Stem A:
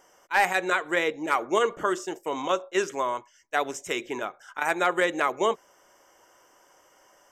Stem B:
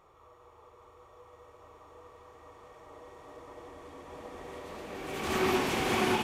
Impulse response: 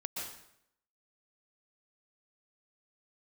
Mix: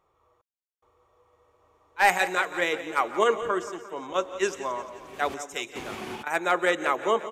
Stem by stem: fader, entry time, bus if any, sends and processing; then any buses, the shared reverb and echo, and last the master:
-2.5 dB, 1.65 s, send -15 dB, echo send -13.5 dB, three bands expanded up and down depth 100%
-9.0 dB, 0.00 s, no send, no echo send, trance gate "xx..xxxx" 73 bpm -60 dB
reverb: on, RT60 0.75 s, pre-delay 112 ms
echo: feedback delay 175 ms, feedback 57%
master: none

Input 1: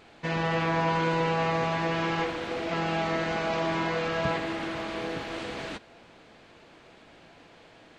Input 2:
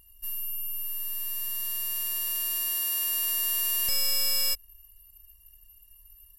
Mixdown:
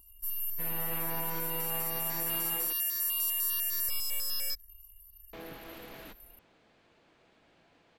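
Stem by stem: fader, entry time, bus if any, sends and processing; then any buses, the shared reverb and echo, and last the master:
-15.0 dB, 0.35 s, muted 2.73–5.33 s, no send, level rider gain up to 3 dB
0.0 dB, 0.00 s, no send, stepped phaser 10 Hz 530–2900 Hz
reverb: none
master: peak limiter -24 dBFS, peak gain reduction 8 dB

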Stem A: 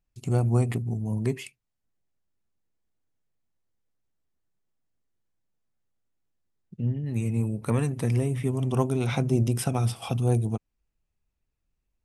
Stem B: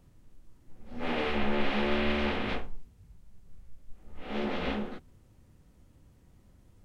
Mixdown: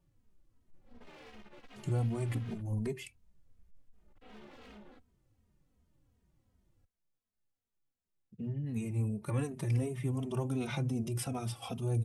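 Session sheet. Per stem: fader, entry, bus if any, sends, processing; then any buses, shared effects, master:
-4.0 dB, 1.60 s, no send, peak limiter -17.5 dBFS, peak gain reduction 6.5 dB
-10.0 dB, 0.00 s, no send, compression, threshold -31 dBFS, peak gain reduction 9.5 dB; hard clipper -38 dBFS, distortion -7 dB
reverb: none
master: endless flanger 2.9 ms -2.7 Hz

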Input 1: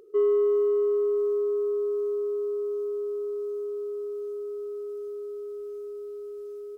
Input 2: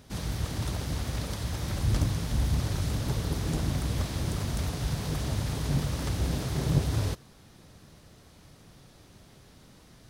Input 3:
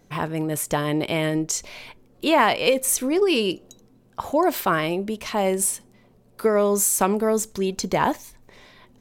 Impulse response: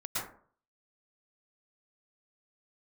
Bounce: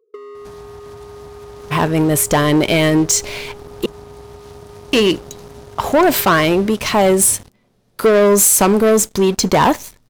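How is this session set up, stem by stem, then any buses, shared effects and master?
-16.0 dB, 0.00 s, bus A, no send, compression 3:1, threshold -31 dBFS, peak gain reduction 8 dB; small resonant body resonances 470/1100 Hz, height 16 dB, ringing for 40 ms
-6.0 dB, 0.35 s, bus A, no send, compression 4:1, threshold -40 dBFS, peak gain reduction 18 dB
+1.0 dB, 1.60 s, muted 3.86–4.93 s, no bus, no send, none
bus A: 0.0 dB, compression 6:1, threshold -40 dBFS, peak gain reduction 6 dB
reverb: none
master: waveshaping leveller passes 3

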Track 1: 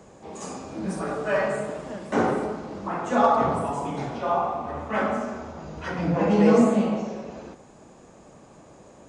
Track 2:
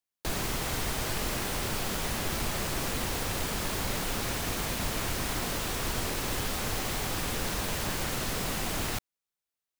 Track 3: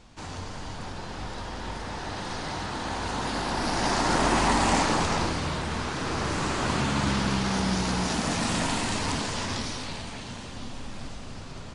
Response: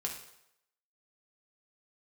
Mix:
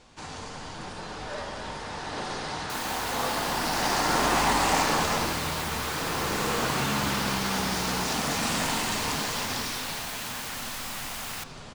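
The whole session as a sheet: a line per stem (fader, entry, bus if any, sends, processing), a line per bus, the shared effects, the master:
-14.0 dB, 0.00 s, no send, none
-2.0 dB, 2.45 s, send -24 dB, inverse Chebyshev high-pass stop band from 350 Hz, stop band 40 dB
-3.5 dB, 0.00 s, send -3.5 dB, none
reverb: on, RT60 0.80 s, pre-delay 3 ms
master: bass shelf 290 Hz -7 dB

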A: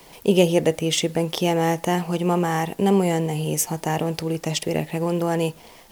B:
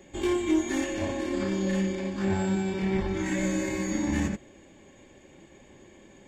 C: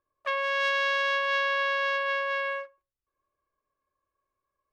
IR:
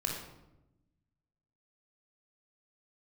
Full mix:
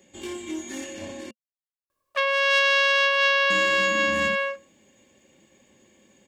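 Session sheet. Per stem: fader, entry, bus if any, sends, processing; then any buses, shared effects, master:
mute
-10.0 dB, 0.00 s, muted 1.31–3.50 s, no send, high-pass 69 Hz; endings held to a fixed fall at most 500 dB/s
+1.0 dB, 1.90 s, no send, none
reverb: none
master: treble shelf 2.4 kHz +11.5 dB; small resonant body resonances 220/520/2800 Hz, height 7 dB, ringing for 45 ms

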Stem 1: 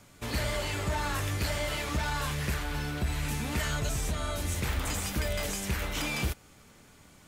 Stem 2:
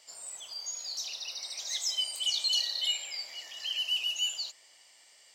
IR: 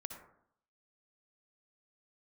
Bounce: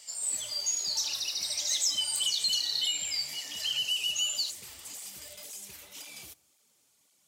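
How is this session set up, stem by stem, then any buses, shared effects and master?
-12.5 dB, 0.00 s, send -13 dB, high-pass 700 Hz 6 dB/octave; peaking EQ 1.6 kHz -9 dB 1.4 oct; cancelling through-zero flanger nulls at 1.9 Hz, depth 5.6 ms
-1.5 dB, 0.00 s, no send, peaking EQ 8.1 kHz +3.5 dB 0.33 oct; compression, threshold -31 dBFS, peak gain reduction 7 dB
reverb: on, RT60 0.65 s, pre-delay 53 ms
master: treble shelf 2.9 kHz +10.5 dB

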